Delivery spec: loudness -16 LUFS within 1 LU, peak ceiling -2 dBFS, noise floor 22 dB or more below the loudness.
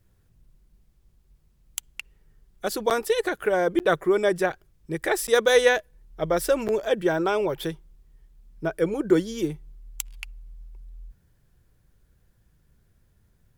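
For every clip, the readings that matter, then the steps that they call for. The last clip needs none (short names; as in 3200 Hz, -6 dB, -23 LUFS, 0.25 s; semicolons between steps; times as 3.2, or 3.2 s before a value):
dropouts 4; longest dropout 8.6 ms; loudness -24.5 LUFS; peak -6.0 dBFS; loudness target -16.0 LUFS
-> interpolate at 2.9/3.79/5.27/6.68, 8.6 ms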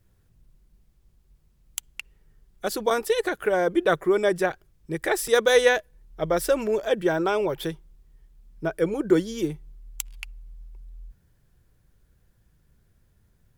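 dropouts 0; loudness -24.5 LUFS; peak -6.0 dBFS; loudness target -16.0 LUFS
-> gain +8.5 dB; limiter -2 dBFS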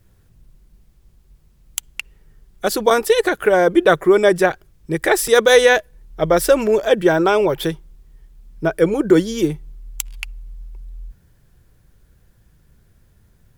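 loudness -16.5 LUFS; peak -2.0 dBFS; noise floor -55 dBFS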